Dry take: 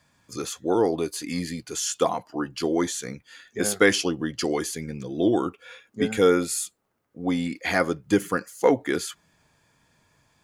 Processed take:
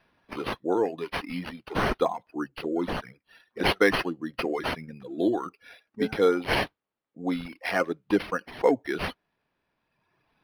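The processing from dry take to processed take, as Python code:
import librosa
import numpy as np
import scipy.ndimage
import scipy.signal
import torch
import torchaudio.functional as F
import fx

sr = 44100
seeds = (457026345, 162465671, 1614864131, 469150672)

y = scipy.signal.sosfilt(scipy.signal.butter(2, 170.0, 'highpass', fs=sr, output='sos'), x)
y = fx.peak_eq(y, sr, hz=8400.0, db=10.0, octaves=1.1)
y = fx.env_flanger(y, sr, rest_ms=9.4, full_db=-19.5, at=(2.46, 3.6), fade=0.02)
y = fx.dereverb_blind(y, sr, rt60_s=1.7)
y = np.interp(np.arange(len(y)), np.arange(len(y))[::6], y[::6])
y = y * 10.0 ** (-2.0 / 20.0)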